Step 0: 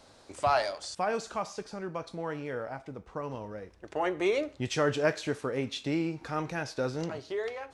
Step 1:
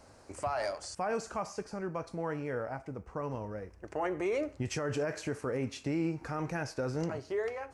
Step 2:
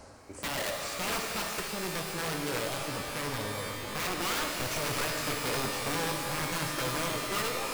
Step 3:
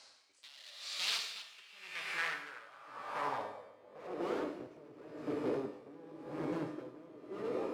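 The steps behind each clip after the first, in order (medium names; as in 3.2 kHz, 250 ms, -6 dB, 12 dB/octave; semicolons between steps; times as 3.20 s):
peaking EQ 3.6 kHz -13.5 dB 0.53 oct; peak limiter -24.5 dBFS, peak gain reduction 11 dB; peaking EQ 72 Hz +6 dB 1.4 oct
reverse; upward compressor, threshold -41 dBFS; reverse; integer overflow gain 29 dB; pitch-shifted reverb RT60 3.5 s, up +12 st, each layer -2 dB, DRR 2 dB
band-pass sweep 3.9 kHz -> 350 Hz, 1.29–4.54 s; logarithmic tremolo 0.92 Hz, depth 20 dB; trim +6.5 dB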